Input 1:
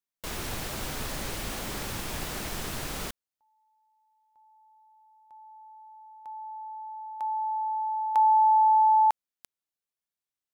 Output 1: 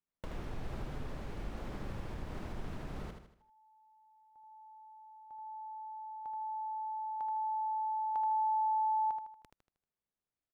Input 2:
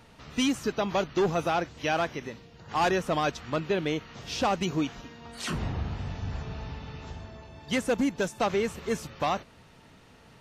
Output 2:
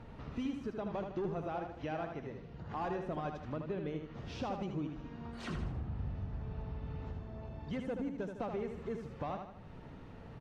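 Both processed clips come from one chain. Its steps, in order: LPF 1500 Hz 6 dB/oct; tilt -1.5 dB/oct; compressor 2.5:1, threshold -45 dBFS; feedback echo 78 ms, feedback 44%, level -6 dB; gain +1 dB

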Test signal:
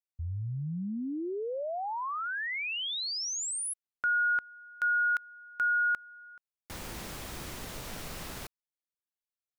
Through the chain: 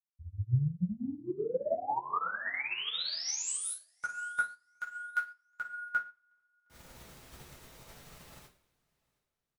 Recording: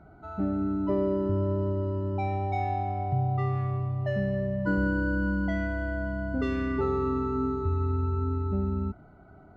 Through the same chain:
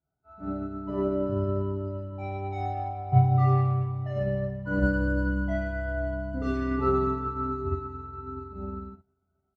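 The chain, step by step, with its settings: feedback echo 0.715 s, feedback 34%, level -20 dB; two-slope reverb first 0.59 s, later 3.1 s, from -22 dB, DRR -5.5 dB; upward expander 2.5:1, over -40 dBFS

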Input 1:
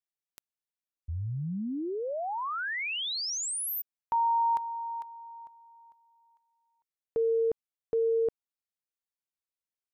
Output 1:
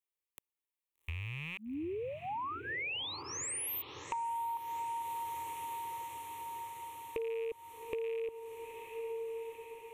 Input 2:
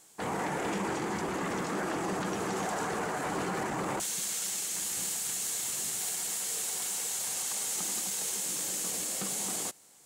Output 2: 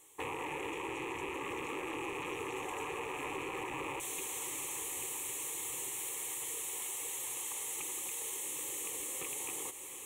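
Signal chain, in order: rattling part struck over -44 dBFS, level -27 dBFS; fixed phaser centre 1000 Hz, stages 8; diffused feedback echo 0.779 s, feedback 72%, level -13.5 dB; compressor 6:1, threshold -38 dBFS; gain +1.5 dB

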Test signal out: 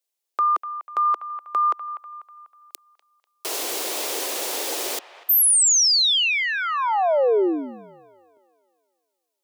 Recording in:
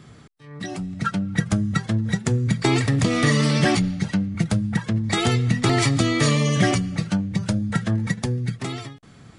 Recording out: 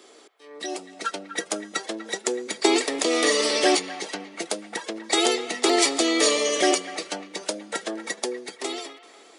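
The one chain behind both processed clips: steep high-pass 350 Hz 36 dB/oct; bell 1500 Hz -9.5 dB 1.6 oct; band-limited delay 0.246 s, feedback 46%, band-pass 1400 Hz, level -12 dB; gain +6 dB

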